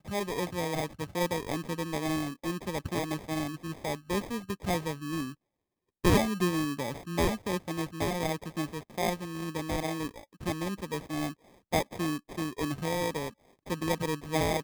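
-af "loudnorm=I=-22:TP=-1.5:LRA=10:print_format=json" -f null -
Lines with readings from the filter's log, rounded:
"input_i" : "-32.4",
"input_tp" : "-11.4",
"input_lra" : "3.1",
"input_thresh" : "-42.6",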